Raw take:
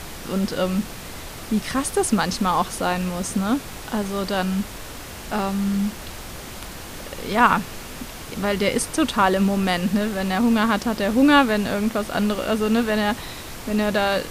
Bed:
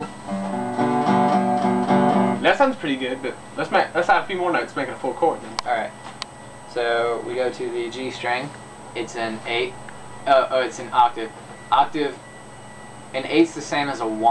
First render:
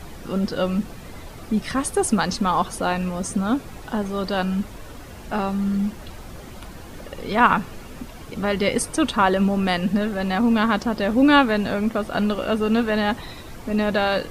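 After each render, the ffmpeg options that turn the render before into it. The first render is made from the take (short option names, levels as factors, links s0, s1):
-af "afftdn=nr=10:nf=-36"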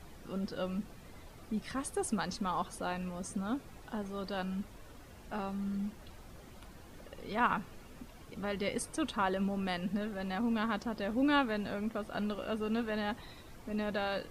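-af "volume=0.2"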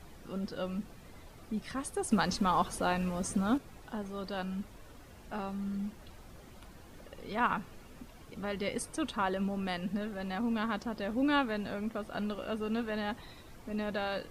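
-filter_complex "[0:a]asettb=1/sr,asplit=3[s0][s1][s2];[s0]atrim=end=2.114[s3];[s1]atrim=start=2.11:end=3.58,asetpts=PTS-STARTPTS,afade=t=in:d=0.004:c=qsin,afade=t=out:st=1.466:d=0.004:c=qsin,acontrast=53[s4];[s2]atrim=start=3.576[s5];[s3][s4]acrossfade=d=0.004:c1=hsin:c2=qsin[s6];[s6][s5]acrossfade=d=0.004:c1=qsin:c2=hsin"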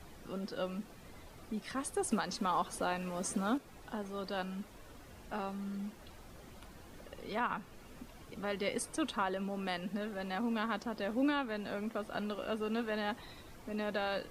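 -filter_complex "[0:a]acrossover=split=210[s0][s1];[s0]acompressor=threshold=0.00282:ratio=6[s2];[s1]alimiter=limit=0.0794:level=0:latency=1:release=369[s3];[s2][s3]amix=inputs=2:normalize=0"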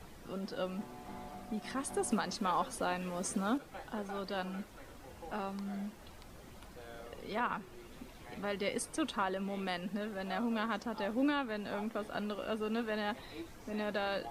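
-filter_complex "[1:a]volume=0.0299[s0];[0:a][s0]amix=inputs=2:normalize=0"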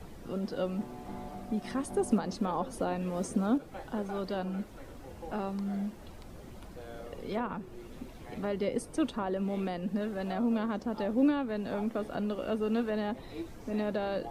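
-filter_complex "[0:a]acrossover=split=680[s0][s1];[s0]acontrast=66[s2];[s1]alimiter=level_in=2.66:limit=0.0631:level=0:latency=1:release=303,volume=0.376[s3];[s2][s3]amix=inputs=2:normalize=0"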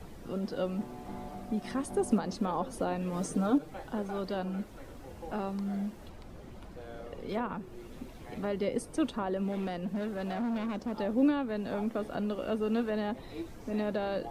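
-filter_complex "[0:a]asettb=1/sr,asplit=3[s0][s1][s2];[s0]atrim=end=3.124[s3];[s1]atrim=start=3.12:end=3.73,asetpts=PTS-STARTPTS,afade=t=in:d=0.004:c=qsin,afade=t=out:st=0.606:d=0.004:c=qsin,aecho=1:1:6.6:0.65,atrim=end_sample=26901[s4];[s2]atrim=start=3.726[s5];[s3][s4]acrossfade=d=0.004:c1=hsin:c2=qsin[s6];[s6][s5]acrossfade=d=0.004:c1=qsin:c2=hsin,asettb=1/sr,asplit=3[s7][s8][s9];[s7]atrim=end=6.094[s10];[s8]atrim=start=6.09:end=7.29,asetpts=PTS-STARTPTS,afade=t=in:d=0.004:c=qsin,afade=t=out:st=1.196:d=0.004:c=qsin,highshelf=f=6000:g=-7.5[s11];[s9]atrim=start=7.286[s12];[s10][s11]acrossfade=d=0.004:c1=hsin:c2=qsin[s13];[s13][s12]acrossfade=d=0.004:c1=qsin:c2=hsin,asettb=1/sr,asplit=3[s14][s15][s16];[s14]atrim=end=9.524[s17];[s15]atrim=start=9.52:end=10.92,asetpts=PTS-STARTPTS,afade=t=in:d=0.004:c=qsin,afade=t=out:st=1.396:d=0.004:c=qsin,asoftclip=type=hard:threshold=0.0335[s18];[s16]atrim=start=10.916[s19];[s17][s18]acrossfade=d=0.004:c1=hsin:c2=qsin[s20];[s20][s19]acrossfade=d=0.004:c1=qsin:c2=hsin"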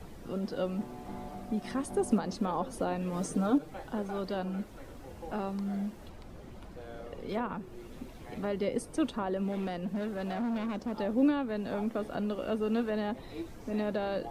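-af anull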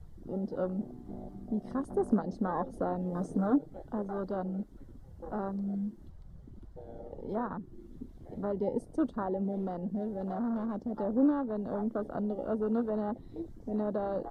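-af "afwtdn=0.0158,equalizer=f=2500:w=3.9:g=-12.5"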